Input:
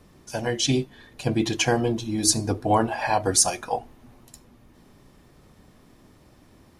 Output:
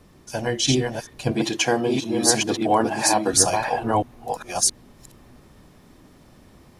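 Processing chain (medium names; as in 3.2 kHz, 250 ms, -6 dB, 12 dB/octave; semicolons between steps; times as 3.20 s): chunks repeated in reverse 671 ms, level -2.5 dB; 1.31–3.33 s: high-pass 190 Hz 12 dB/octave; trim +1.5 dB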